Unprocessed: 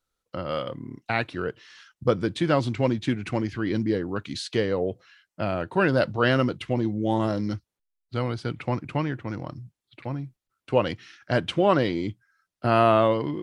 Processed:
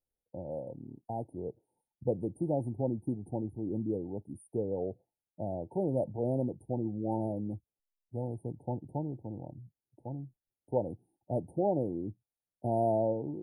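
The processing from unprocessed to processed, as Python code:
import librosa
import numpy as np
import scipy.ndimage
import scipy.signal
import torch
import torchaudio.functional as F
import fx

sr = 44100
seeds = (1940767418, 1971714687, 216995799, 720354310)

y = fx.brickwall_bandstop(x, sr, low_hz=920.0, high_hz=8700.0)
y = y * 10.0 ** (-8.5 / 20.0)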